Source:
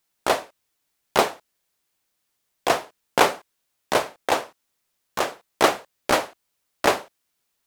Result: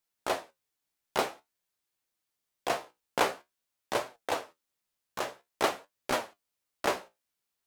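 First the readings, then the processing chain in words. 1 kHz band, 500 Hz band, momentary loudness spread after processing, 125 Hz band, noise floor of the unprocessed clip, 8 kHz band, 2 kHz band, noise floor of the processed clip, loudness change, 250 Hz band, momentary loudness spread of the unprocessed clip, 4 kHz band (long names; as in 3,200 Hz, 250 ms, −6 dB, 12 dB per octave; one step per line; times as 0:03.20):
−9.5 dB, −9.5 dB, 10 LU, −9.5 dB, −76 dBFS, −9.5 dB, −9.5 dB, −85 dBFS, −9.5 dB, −10.0 dB, 9 LU, −9.5 dB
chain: flanger 0.49 Hz, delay 7.7 ms, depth 9.8 ms, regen +56%
level −5.5 dB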